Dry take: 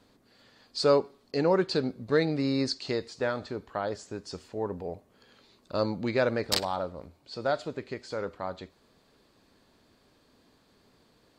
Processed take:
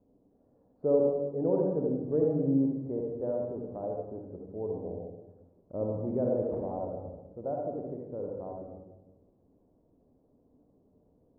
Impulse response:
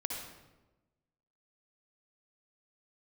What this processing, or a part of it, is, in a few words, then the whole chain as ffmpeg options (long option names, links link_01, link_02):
next room: -filter_complex "[0:a]lowpass=frequency=670:width=0.5412,lowpass=frequency=670:width=1.3066[link_01];[1:a]atrim=start_sample=2205[link_02];[link_01][link_02]afir=irnorm=-1:irlink=0,volume=-3.5dB"